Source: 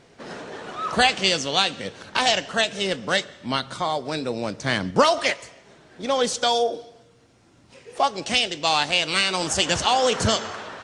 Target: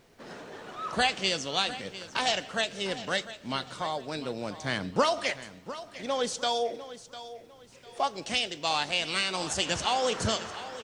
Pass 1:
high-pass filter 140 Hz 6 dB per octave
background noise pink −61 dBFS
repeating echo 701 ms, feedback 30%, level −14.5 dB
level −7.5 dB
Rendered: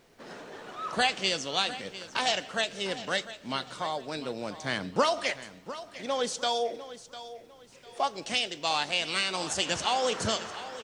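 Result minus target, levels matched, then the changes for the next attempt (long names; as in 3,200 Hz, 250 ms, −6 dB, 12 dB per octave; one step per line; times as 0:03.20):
125 Hz band −3.0 dB
remove: high-pass filter 140 Hz 6 dB per octave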